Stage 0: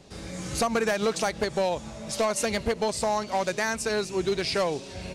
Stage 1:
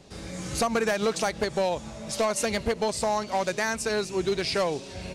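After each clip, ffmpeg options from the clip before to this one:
ffmpeg -i in.wav -af anull out.wav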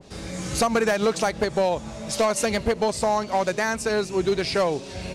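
ffmpeg -i in.wav -af "adynamicequalizer=threshold=0.01:dfrequency=1900:dqfactor=0.7:tfrequency=1900:tqfactor=0.7:attack=5:release=100:ratio=0.375:range=2:mode=cutabove:tftype=highshelf,volume=4dB" out.wav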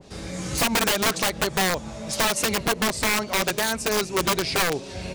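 ffmpeg -i in.wav -af "aeval=exprs='(mod(6.68*val(0)+1,2)-1)/6.68':channel_layout=same" out.wav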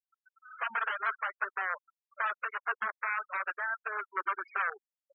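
ffmpeg -i in.wav -af "bandpass=frequency=1400:width_type=q:width=4:csg=0,afftfilt=real='re*gte(hypot(re,im),0.0224)':imag='im*gte(hypot(re,im),0.0224)':win_size=1024:overlap=0.75" out.wav

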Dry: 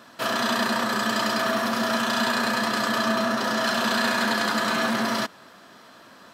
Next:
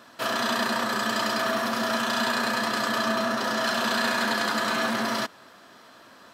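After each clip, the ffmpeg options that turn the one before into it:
ffmpeg -i in.wav -af "equalizer=frequency=180:width=2.2:gain=-4,volume=-1.5dB" out.wav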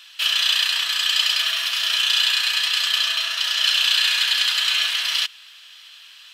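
ffmpeg -i in.wav -af "acontrast=49,highpass=frequency=2900:width_type=q:width=4" out.wav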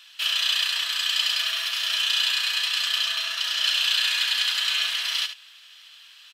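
ffmpeg -i in.wav -af "aecho=1:1:73:0.316,volume=-4.5dB" out.wav

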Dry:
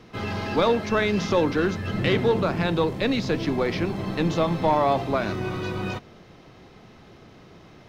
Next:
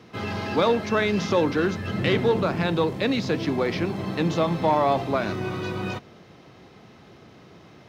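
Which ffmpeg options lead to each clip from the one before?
ffmpeg -i in.wav -af "highpass=78" out.wav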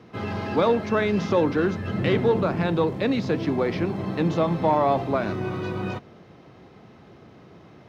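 ffmpeg -i in.wav -af "highshelf=frequency=2400:gain=-9,volume=1dB" out.wav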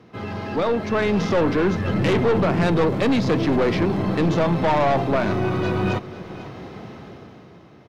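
ffmpeg -i in.wav -af "dynaudnorm=framelen=110:gausssize=17:maxgain=14dB,aeval=exprs='(tanh(5.62*val(0)+0.25)-tanh(0.25))/5.62':channel_layout=same,aecho=1:1:496:0.158" out.wav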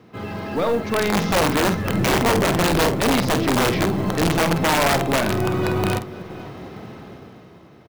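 ffmpeg -i in.wav -filter_complex "[0:a]aeval=exprs='(mod(4.73*val(0)+1,2)-1)/4.73':channel_layout=same,acrusher=bits=7:mode=log:mix=0:aa=0.000001,asplit=2[link_01][link_02];[link_02]adelay=49,volume=-10dB[link_03];[link_01][link_03]amix=inputs=2:normalize=0" out.wav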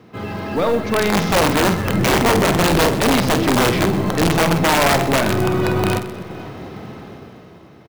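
ffmpeg -i in.wav -af "aecho=1:1:127|254|381|508:0.188|0.0772|0.0317|0.013,volume=3dB" out.wav

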